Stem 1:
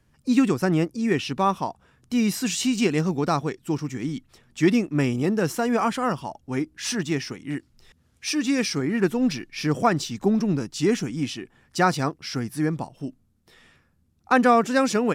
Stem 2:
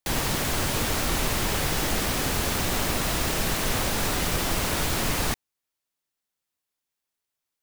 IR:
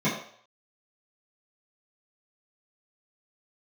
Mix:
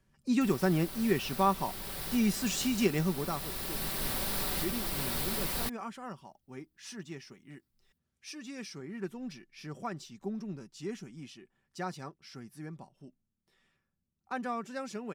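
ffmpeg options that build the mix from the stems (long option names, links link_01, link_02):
-filter_complex "[0:a]volume=-7.5dB,afade=type=out:start_time=3.01:duration=0.45:silence=0.281838,asplit=2[link_01][link_02];[1:a]aexciter=amount=1.4:drive=4.4:freq=3700,adelay=350,volume=-10.5dB[link_03];[link_02]apad=whole_len=351882[link_04];[link_03][link_04]sidechaincompress=threshold=-33dB:ratio=8:attack=12:release=1440[link_05];[link_01][link_05]amix=inputs=2:normalize=0,aecho=1:1:5.2:0.38"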